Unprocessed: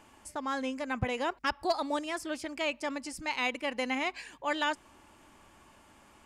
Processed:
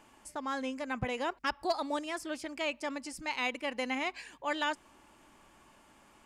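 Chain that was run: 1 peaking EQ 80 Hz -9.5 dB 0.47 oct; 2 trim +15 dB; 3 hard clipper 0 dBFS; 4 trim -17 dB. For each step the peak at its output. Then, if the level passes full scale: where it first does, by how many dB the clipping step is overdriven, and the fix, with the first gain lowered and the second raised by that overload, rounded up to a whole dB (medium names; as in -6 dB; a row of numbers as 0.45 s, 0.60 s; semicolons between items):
-19.0 dBFS, -4.0 dBFS, -4.0 dBFS, -21.0 dBFS; nothing clips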